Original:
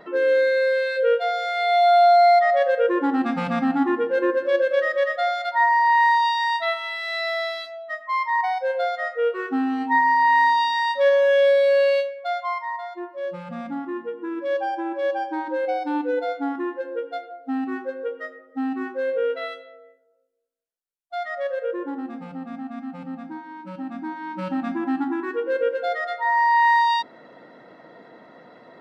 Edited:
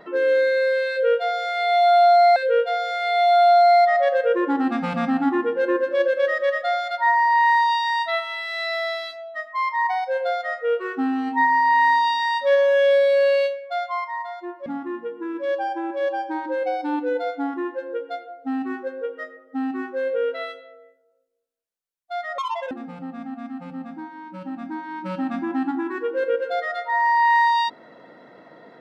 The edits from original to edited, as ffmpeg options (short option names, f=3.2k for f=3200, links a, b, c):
-filter_complex "[0:a]asplit=5[a][b][c][d][e];[a]atrim=end=2.362[f];[b]atrim=start=0.898:end=13.202[g];[c]atrim=start=13.678:end=21.404[h];[d]atrim=start=21.4:end=22.04,asetpts=PTS-STARTPTS,asetrate=85113,aresample=44100[i];[e]atrim=start=22.036[j];[f][g]acrossfade=d=0.004:c1=hsin:c2=hsin[k];[k][h]acrossfade=d=0.004:c1=hsin:c2=hsin[l];[l][i]acrossfade=d=0.004:c1=hsin:c2=hsin[m];[m][j]acrossfade=d=0.004:c1=hsin:c2=hsin"